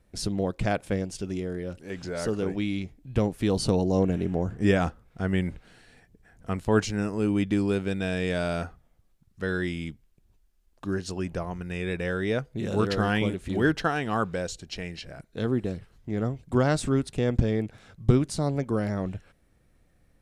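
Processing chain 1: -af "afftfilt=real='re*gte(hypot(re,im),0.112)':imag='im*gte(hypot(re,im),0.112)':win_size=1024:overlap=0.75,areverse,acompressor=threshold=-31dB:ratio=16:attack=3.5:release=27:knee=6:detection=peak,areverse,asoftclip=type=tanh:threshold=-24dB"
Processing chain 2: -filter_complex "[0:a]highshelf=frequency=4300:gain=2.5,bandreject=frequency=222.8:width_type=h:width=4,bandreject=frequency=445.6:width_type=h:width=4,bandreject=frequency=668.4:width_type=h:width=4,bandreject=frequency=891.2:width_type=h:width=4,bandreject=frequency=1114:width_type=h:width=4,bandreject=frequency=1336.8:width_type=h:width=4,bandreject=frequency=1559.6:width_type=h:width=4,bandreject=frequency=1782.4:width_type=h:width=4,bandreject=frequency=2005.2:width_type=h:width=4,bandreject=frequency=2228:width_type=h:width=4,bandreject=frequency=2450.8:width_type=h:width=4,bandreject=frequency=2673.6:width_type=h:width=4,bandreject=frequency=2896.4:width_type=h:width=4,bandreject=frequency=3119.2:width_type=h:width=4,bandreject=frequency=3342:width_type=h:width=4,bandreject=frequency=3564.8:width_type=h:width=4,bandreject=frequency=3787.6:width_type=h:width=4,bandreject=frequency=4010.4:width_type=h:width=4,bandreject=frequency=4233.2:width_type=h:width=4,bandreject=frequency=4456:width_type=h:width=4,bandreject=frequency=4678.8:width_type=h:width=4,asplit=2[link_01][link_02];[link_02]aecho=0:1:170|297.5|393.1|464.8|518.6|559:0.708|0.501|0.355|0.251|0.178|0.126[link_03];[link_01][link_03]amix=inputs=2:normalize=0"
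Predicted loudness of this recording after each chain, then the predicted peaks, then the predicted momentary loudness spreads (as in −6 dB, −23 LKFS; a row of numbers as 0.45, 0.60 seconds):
−37.0, −25.5 LKFS; −25.5, −6.5 dBFS; 7, 11 LU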